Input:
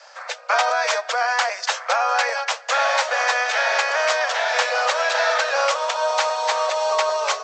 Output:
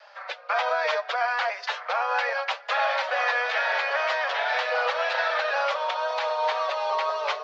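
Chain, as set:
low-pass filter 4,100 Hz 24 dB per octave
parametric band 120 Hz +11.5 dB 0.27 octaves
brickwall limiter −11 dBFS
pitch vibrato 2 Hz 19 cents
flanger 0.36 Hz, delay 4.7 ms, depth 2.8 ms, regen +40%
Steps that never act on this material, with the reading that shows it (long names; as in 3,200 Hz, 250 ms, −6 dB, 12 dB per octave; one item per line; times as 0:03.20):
parametric band 120 Hz: nothing at its input below 400 Hz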